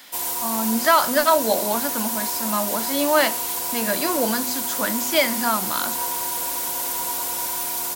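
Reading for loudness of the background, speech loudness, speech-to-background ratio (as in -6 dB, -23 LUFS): -23.5 LUFS, -23.0 LUFS, 0.5 dB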